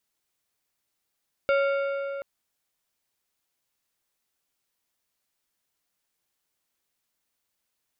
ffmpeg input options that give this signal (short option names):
-f lavfi -i "aevalsrc='0.106*pow(10,-3*t/3.48)*sin(2*PI*555*t)+0.0531*pow(10,-3*t/2.644)*sin(2*PI*1387.5*t)+0.0266*pow(10,-3*t/2.296)*sin(2*PI*2220*t)+0.0133*pow(10,-3*t/2.147)*sin(2*PI*2775*t)+0.00668*pow(10,-3*t/1.985)*sin(2*PI*3607.5*t)+0.00335*pow(10,-3*t/1.831)*sin(2*PI*4717.5*t)':d=0.73:s=44100"